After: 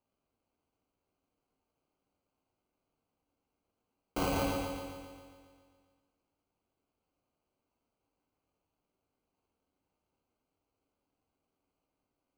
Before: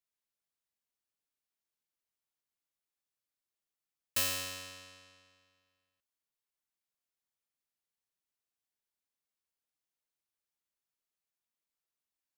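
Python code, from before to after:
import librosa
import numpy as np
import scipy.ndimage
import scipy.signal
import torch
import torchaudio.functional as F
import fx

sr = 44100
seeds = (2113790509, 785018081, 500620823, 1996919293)

p1 = fx.peak_eq(x, sr, hz=290.0, db=15.0, octaves=1.1)
p2 = fx.over_compress(p1, sr, threshold_db=-37.0, ratio=-1.0)
p3 = p1 + F.gain(torch.from_numpy(p2), 2.0).numpy()
p4 = fx.sample_hold(p3, sr, seeds[0], rate_hz=1800.0, jitter_pct=0)
p5 = fx.rev_double_slope(p4, sr, seeds[1], early_s=1.0, late_s=2.6, knee_db=-28, drr_db=1.0)
y = F.gain(torch.from_numpy(p5), -6.0).numpy()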